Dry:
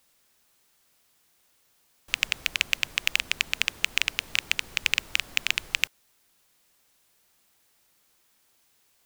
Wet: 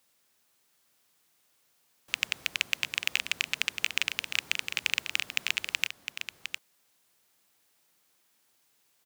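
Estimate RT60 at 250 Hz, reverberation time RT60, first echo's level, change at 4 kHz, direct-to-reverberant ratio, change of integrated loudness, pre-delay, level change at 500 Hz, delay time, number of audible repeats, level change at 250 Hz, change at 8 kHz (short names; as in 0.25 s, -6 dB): none, none, -8.0 dB, -3.5 dB, none, -4.0 dB, none, -3.5 dB, 0.708 s, 1, -3.5 dB, -3.5 dB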